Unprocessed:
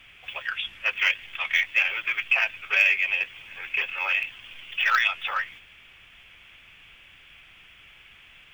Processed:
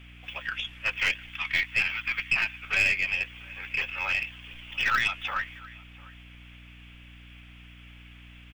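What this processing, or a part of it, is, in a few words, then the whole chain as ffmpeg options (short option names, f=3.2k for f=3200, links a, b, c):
valve amplifier with mains hum: -filter_complex "[0:a]asettb=1/sr,asplit=3[a][b][c];[a]atrim=end=1.304[d];[b]atrim=start=1.3:end=2.62,asetpts=PTS-STARTPTS,afade=t=in:d=0.004:c=qsin,afade=t=out:st=1.316:d=0.004:c=qsin,highpass=f=860:w=0.5412,highpass=f=860:w=1.3066[e];[c]atrim=start=2.616[f];[d][e]acrossfade=d=0.004:c1=hsin:c2=qsin[g];[g][f]acrossfade=d=0.004:c1=qsin:c2=hsin,asplit=2[h][i];[i]adelay=699.7,volume=-21dB,highshelf=f=4k:g=-15.7[j];[h][j]amix=inputs=2:normalize=0,aeval=exprs='(tanh(4.47*val(0)+0.35)-tanh(0.35))/4.47':c=same,aeval=exprs='val(0)+0.00447*(sin(2*PI*60*n/s)+sin(2*PI*2*60*n/s)/2+sin(2*PI*3*60*n/s)/3+sin(2*PI*4*60*n/s)/4+sin(2*PI*5*60*n/s)/5)':c=same,volume=-1.5dB"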